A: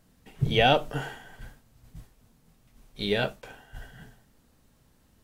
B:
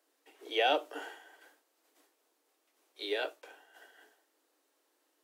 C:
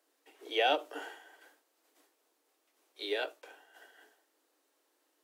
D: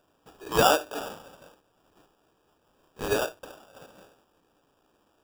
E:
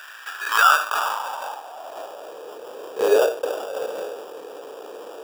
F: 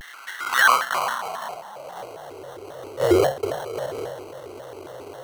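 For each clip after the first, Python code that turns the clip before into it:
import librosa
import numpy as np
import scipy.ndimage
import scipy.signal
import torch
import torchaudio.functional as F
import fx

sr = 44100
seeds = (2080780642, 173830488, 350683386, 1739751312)

y1 = scipy.signal.sosfilt(scipy.signal.butter(16, 290.0, 'highpass', fs=sr, output='sos'), x)
y1 = y1 * librosa.db_to_amplitude(-7.0)
y2 = fx.end_taper(y1, sr, db_per_s=280.0)
y3 = fx.wow_flutter(y2, sr, seeds[0], rate_hz=2.1, depth_cents=27.0)
y3 = fx.sample_hold(y3, sr, seeds[1], rate_hz=2100.0, jitter_pct=0)
y3 = y3 * librosa.db_to_amplitude(8.0)
y4 = fx.filter_sweep_highpass(y3, sr, from_hz=1700.0, to_hz=460.0, start_s=0.22, end_s=2.53, q=4.7)
y4 = fx.env_flatten(y4, sr, amount_pct=50)
y4 = y4 * librosa.db_to_amplitude(-1.0)
y5 = fx.octave_divider(y4, sr, octaves=2, level_db=-5.0)
y5 = fx.vibrato_shape(y5, sr, shape='square', rate_hz=3.7, depth_cents=250.0)
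y5 = y5 * librosa.db_to_amplitude(-1.0)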